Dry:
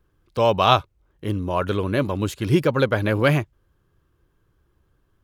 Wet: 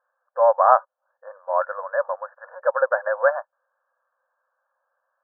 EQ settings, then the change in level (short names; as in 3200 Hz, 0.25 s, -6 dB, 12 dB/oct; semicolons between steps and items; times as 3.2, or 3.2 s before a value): brick-wall FIR band-pass 500–1800 Hz; air absorption 340 m; +4.0 dB